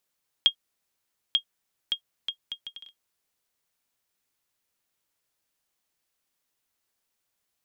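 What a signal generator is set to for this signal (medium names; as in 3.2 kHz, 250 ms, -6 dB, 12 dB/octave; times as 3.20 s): bouncing ball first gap 0.89 s, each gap 0.64, 3.25 kHz, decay 89 ms -8.5 dBFS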